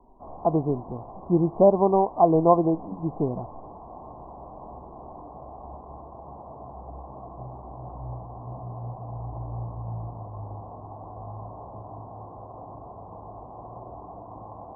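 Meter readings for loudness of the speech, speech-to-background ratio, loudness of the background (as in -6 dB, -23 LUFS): -22.5 LUFS, 18.0 dB, -40.5 LUFS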